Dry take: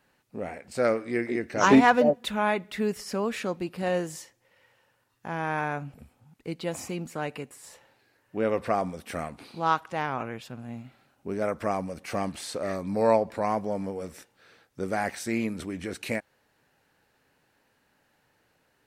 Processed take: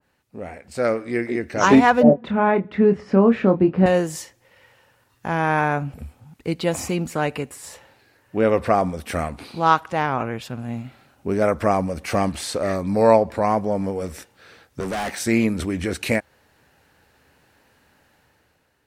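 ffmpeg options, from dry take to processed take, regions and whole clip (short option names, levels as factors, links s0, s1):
-filter_complex "[0:a]asettb=1/sr,asplit=3[s0][s1][s2];[s0]atrim=end=2.034[s3];[s1]atrim=start=2.03:end=3.86,asetpts=PTS-STARTPTS,afade=t=in:d=0.004:c=qsin,afade=t=out:st=1.826:d=0.004:c=qsin,highpass=130,lowpass=2000,lowshelf=f=420:g=10.5,asplit=2[s4][s5];[s5]adelay=26,volume=0.398[s6];[s4][s6]amix=inputs=2:normalize=0,atrim=end_sample=80703[s7];[s2]atrim=start=3.856[s8];[s3][s7]acrossfade=d=0.004:c1=hsin:c2=qsin[s9];[s9][s8]acrossfade=d=0.004:c1=qsin:c2=hsin,asettb=1/sr,asplit=3[s10][s11][s12];[s10]atrim=end=14.804[s13];[s11]atrim=start=14.8:end=15.2,asetpts=PTS-STARTPTS,afade=t=in:d=0.004:c=qsin,afade=t=out:st=0.396:d=0.004:c=qsin,highpass=f=160:w=0.5412,highpass=f=160:w=1.3066,asoftclip=type=hard:threshold=0.0224[s14];[s12]atrim=start=15.196[s15];[s13][s14]acrossfade=d=0.004:c1=hsin:c2=qsin[s16];[s16][s15]acrossfade=d=0.004:c1=qsin:c2=hsin,equalizer=f=72:t=o:w=0.68:g=9.5,dynaudnorm=f=350:g=5:m=2.99,adynamicequalizer=threshold=0.0316:dfrequency=1600:dqfactor=0.7:tfrequency=1600:tqfactor=0.7:attack=5:release=100:ratio=0.375:range=2:mode=cutabove:tftype=highshelf"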